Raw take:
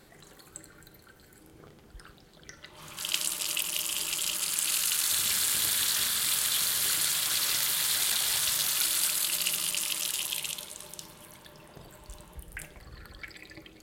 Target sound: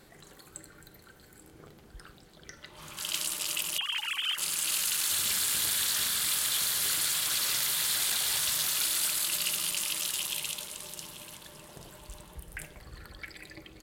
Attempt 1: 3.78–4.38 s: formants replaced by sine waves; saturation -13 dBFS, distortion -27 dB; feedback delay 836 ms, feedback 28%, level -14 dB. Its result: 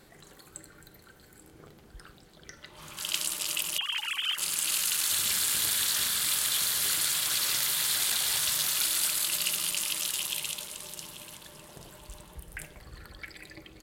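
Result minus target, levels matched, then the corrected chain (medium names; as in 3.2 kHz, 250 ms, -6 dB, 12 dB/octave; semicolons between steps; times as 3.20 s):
saturation: distortion -10 dB
3.78–4.38 s: formants replaced by sine waves; saturation -20.5 dBFS, distortion -16 dB; feedback delay 836 ms, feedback 28%, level -14 dB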